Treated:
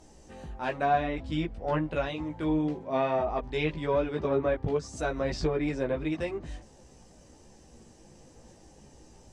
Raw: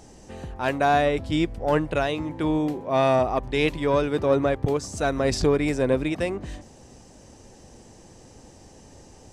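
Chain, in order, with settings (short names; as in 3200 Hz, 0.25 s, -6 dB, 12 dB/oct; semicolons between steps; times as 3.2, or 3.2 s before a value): treble ducked by the level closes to 2900 Hz, closed at -17 dBFS; chorus voices 6, 0.49 Hz, delay 16 ms, depth 3.6 ms; gain -3.5 dB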